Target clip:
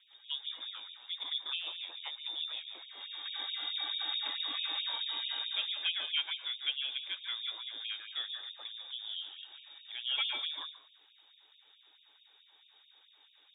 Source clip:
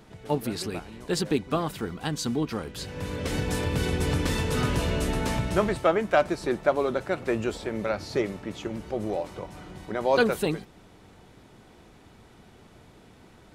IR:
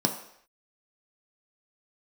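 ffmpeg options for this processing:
-filter_complex "[0:a]lowpass=f=3.2k:t=q:w=0.5098,lowpass=f=3.2k:t=q:w=0.6013,lowpass=f=3.2k:t=q:w=0.9,lowpass=f=3.2k:t=q:w=2.563,afreqshift=-3800,highshelf=f=2.4k:g=-8.5,asplit=2[a][b];[1:a]atrim=start_sample=2205,adelay=143[c];[b][c]afir=irnorm=-1:irlink=0,volume=-11dB[d];[a][d]amix=inputs=2:normalize=0,afftfilt=real='re*gte(b*sr/1024,240*pow(2400/240,0.5+0.5*sin(2*PI*4.6*pts/sr)))':imag='im*gte(b*sr/1024,240*pow(2400/240,0.5+0.5*sin(2*PI*4.6*pts/sr)))':win_size=1024:overlap=0.75,volume=-7.5dB"

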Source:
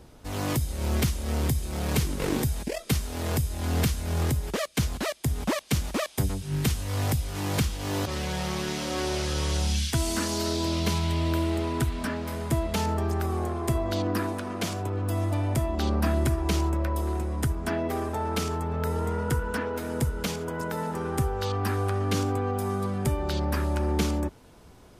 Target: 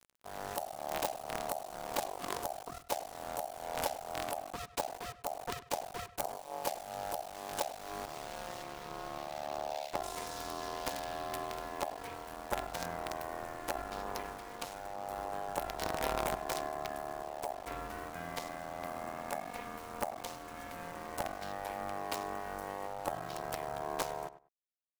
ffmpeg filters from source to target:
-filter_complex "[0:a]asettb=1/sr,asplit=3[a][b][c];[a]atrim=end=8.634[d];[b]atrim=start=8.63:end=10.03,asetpts=PTS-STARTPTS,afade=t=in:d=0.004:c=qsin,afade=t=out:st=1.396:d=0.004:c=qsin,adynamicsmooth=sensitivity=6.5:basefreq=1.6k[e];[c]atrim=start=10.026[f];[d][e]acrossfade=d=0.004:c1=hsin:c2=qsin[g];[g][f]acrossfade=d=0.004:c1=qsin:c2=hsin,acrusher=bits=4:dc=4:mix=0:aa=0.000001,aeval=exprs='val(0)*sin(2*PI*710*n/s)':c=same,asplit=2[h][i];[i]adelay=99,lowpass=f=2.3k:p=1,volume=-14dB,asplit=2[j][k];[k]adelay=99,lowpass=f=2.3k:p=1,volume=0.18[l];[j][l]amix=inputs=2:normalize=0[m];[h][m]amix=inputs=2:normalize=0,volume=-7.5dB"

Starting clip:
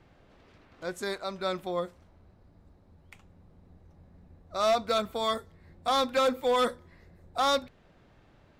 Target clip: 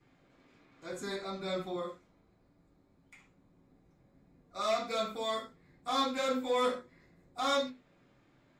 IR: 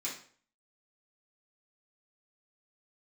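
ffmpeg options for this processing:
-filter_complex "[0:a]asettb=1/sr,asplit=3[a][b][c];[a]atrim=end=0.924[d];[b]atrim=start=0.92:end=1.76,asetpts=PTS-STARTPTS,afade=t=in:d=0.004:c=qsin,afade=t=out:st=0.836:d=0.004:c=qsin,lowshelf=f=190:g=10.5[e];[c]atrim=start=1.756[f];[d][e]acrossfade=d=0.004:c1=hsin:c2=qsin[g];[g][f]acrossfade=d=0.004:c1=qsin:c2=hsin[h];[1:a]atrim=start_sample=2205,atrim=end_sample=6615[i];[h][i]afir=irnorm=-1:irlink=0,volume=-6.5dB"

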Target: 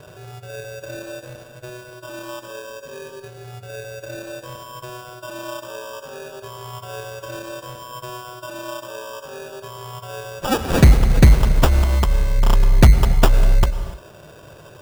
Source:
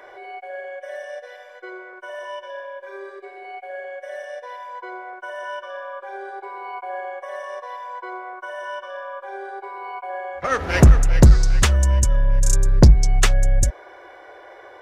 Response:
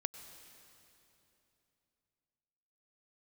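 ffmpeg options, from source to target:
-filter_complex "[0:a]equalizer=f=800:t=o:w=0.33:g=-12,equalizer=f=2k:t=o:w=0.33:g=10,equalizer=f=5k:t=o:w=0.33:g=11,acrusher=samples=21:mix=1:aa=0.000001[a];[1:a]atrim=start_sample=2205,afade=t=out:st=0.35:d=0.01,atrim=end_sample=15876[b];[a][b]afir=irnorm=-1:irlink=0,volume=1dB"

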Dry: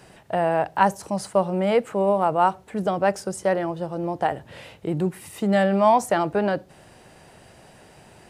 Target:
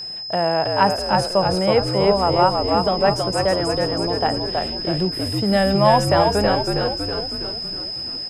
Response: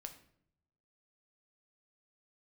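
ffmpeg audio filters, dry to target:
-filter_complex "[0:a]aeval=exprs='val(0)+0.0316*sin(2*PI*5100*n/s)':c=same,asplit=9[a][b][c][d][e][f][g][h][i];[b]adelay=322,afreqshift=-57,volume=-3dB[j];[c]adelay=644,afreqshift=-114,volume=-8dB[k];[d]adelay=966,afreqshift=-171,volume=-13.1dB[l];[e]adelay=1288,afreqshift=-228,volume=-18.1dB[m];[f]adelay=1610,afreqshift=-285,volume=-23.1dB[n];[g]adelay=1932,afreqshift=-342,volume=-28.2dB[o];[h]adelay=2254,afreqshift=-399,volume=-33.2dB[p];[i]adelay=2576,afreqshift=-456,volume=-38.3dB[q];[a][j][k][l][m][n][o][p][q]amix=inputs=9:normalize=0,volume=1.5dB"

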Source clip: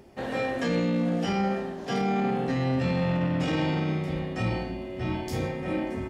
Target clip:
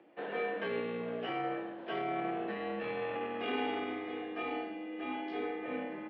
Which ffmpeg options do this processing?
-filter_complex "[0:a]asettb=1/sr,asplit=3[a][b][c];[a]atrim=end=3.154[d];[b]atrim=start=3.15:end=5.66,asetpts=PTS-STARTPTS,afade=t=in:d=0.004:c=qsin,afade=t=out:st=2.506:d=0.004:c=qsin,aecho=1:1:2.4:0.69,atrim=end_sample=110691[e];[c]atrim=start=5.656[f];[d][e]acrossfade=d=0.004:c1=hsin:c2=qsin[g];[g][f]acrossfade=d=0.004:c1=qsin:c2=hsin,highpass=f=350:t=q:w=0.5412,highpass=f=350:t=q:w=1.307,lowpass=f=3.3k:t=q:w=0.5176,lowpass=f=3.3k:t=q:w=0.7071,lowpass=f=3.3k:t=q:w=1.932,afreqshift=-56,volume=-5.5dB"

